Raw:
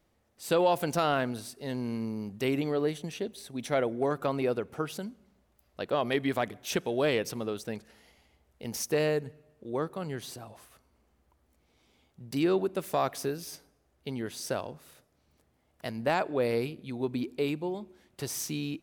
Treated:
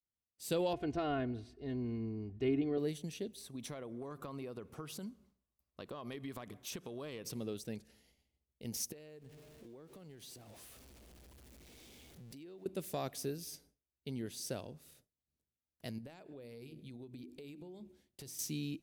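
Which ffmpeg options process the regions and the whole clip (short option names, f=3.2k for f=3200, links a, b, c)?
-filter_complex "[0:a]asettb=1/sr,asplit=3[a][b][c];[a]atrim=end=0.734[d];[b]atrim=start=0.73:end=2.78,asetpts=PTS-STARTPTS,afade=t=in:d=0.004:c=qsin,afade=t=out:st=2.046:d=0.004:c=qsin,lowpass=2.1k,equalizer=f=62:t=o:w=0.95:g=11.5,aecho=1:1:2.8:0.73,atrim=end_sample=90405[e];[c]atrim=start=2.776[f];[d][e]acrossfade=d=0.004:c1=hsin:c2=qsin[g];[g][f]acrossfade=d=0.004:c1=qsin:c2=hsin,asettb=1/sr,asplit=3[h][i][j];[h]atrim=end=3.414[k];[i]atrim=start=3.41:end=7.31,asetpts=PTS-STARTPTS,afade=t=in:d=0.004:c=qsin,afade=t=out:st=3.896:d=0.004:c=qsin,acompressor=threshold=-34dB:ratio=6:attack=3.2:release=140:knee=1:detection=peak,equalizer=f=1.1k:w=2.9:g=13[l];[j]atrim=start=7.306[m];[k][l]acrossfade=d=0.004:c1=hsin:c2=qsin[n];[n][m]acrossfade=d=0.004:c1=qsin:c2=hsin,asettb=1/sr,asplit=3[o][p][q];[o]atrim=end=8.924[r];[p]atrim=start=8.92:end=12.66,asetpts=PTS-STARTPTS,afade=t=in:d=0.004:c=qsin,afade=t=out:st=3.736:d=0.004:c=qsin,aeval=exprs='val(0)+0.5*0.00596*sgn(val(0))':c=same,acompressor=threshold=-41dB:ratio=12:attack=3.2:release=140:knee=1:detection=peak,bass=f=250:g=-5,treble=f=4k:g=-3[s];[q]atrim=start=12.656[t];[r][s]acrossfade=d=0.004:c1=hsin:c2=qsin[u];[u][t]acrossfade=d=0.004:c1=qsin:c2=hsin,asettb=1/sr,asplit=3[v][w][x];[v]atrim=end=15.984[y];[w]atrim=start=15.98:end=18.39,asetpts=PTS-STARTPTS,afade=t=in:d=0.004:c=qsin,afade=t=out:st=2.406:d=0.004:c=qsin,bandreject=f=50:t=h:w=6,bandreject=f=100:t=h:w=6,bandreject=f=150:t=h:w=6,bandreject=f=200:t=h:w=6,bandreject=f=250:t=h:w=6,bandreject=f=300:t=h:w=6,bandreject=f=350:t=h:w=6,acompressor=threshold=-40dB:ratio=8:attack=3.2:release=140:knee=1:detection=peak[z];[x]atrim=start=18.386[aa];[y][z]acrossfade=d=0.004:c1=hsin:c2=qsin[ab];[ab][aa]acrossfade=d=0.004:c1=qsin:c2=hsin,agate=range=-33dB:threshold=-56dB:ratio=3:detection=peak,equalizer=f=1.1k:t=o:w=2.1:g=-12.5,volume=-3.5dB"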